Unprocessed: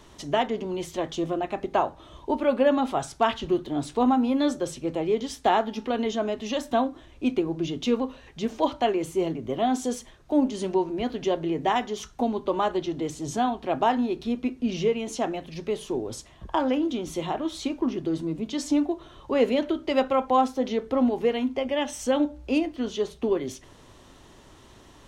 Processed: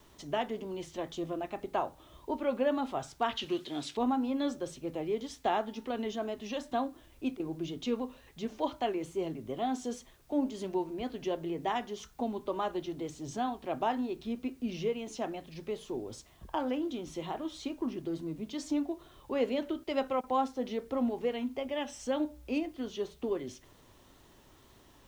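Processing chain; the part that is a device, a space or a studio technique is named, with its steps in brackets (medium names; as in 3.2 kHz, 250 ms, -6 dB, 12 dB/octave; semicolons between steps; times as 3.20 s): worn cassette (low-pass 8.5 kHz; wow and flutter; level dips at 7.37/19.84/20.21 s, 25 ms -16 dB; white noise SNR 35 dB); 3.37–3.97 s: frequency weighting D; trim -8.5 dB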